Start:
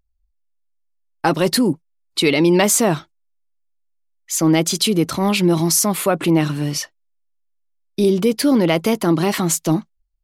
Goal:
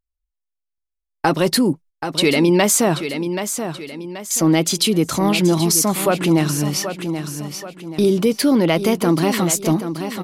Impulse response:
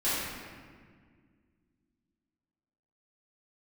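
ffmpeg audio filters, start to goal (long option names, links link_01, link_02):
-filter_complex "[0:a]agate=range=-17dB:threshold=-39dB:ratio=16:detection=peak,aecho=1:1:780|1560|2340|3120:0.282|0.093|0.0307|0.0101,asplit=2[link_01][link_02];[link_02]acompressor=threshold=-26dB:ratio=6,volume=0dB[link_03];[link_01][link_03]amix=inputs=2:normalize=0,volume=-2dB"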